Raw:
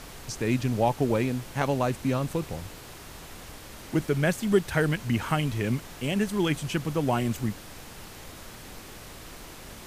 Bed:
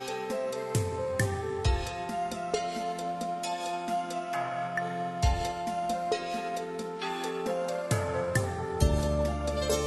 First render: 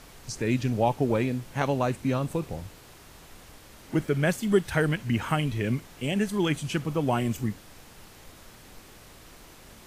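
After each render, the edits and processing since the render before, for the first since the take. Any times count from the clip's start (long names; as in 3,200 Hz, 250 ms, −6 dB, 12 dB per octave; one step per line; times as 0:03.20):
noise reduction from a noise print 6 dB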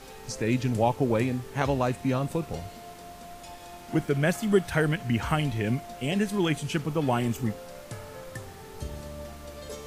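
mix in bed −12 dB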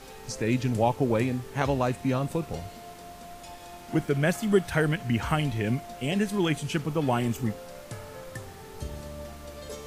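no processing that can be heard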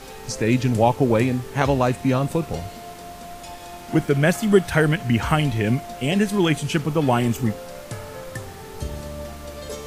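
level +6.5 dB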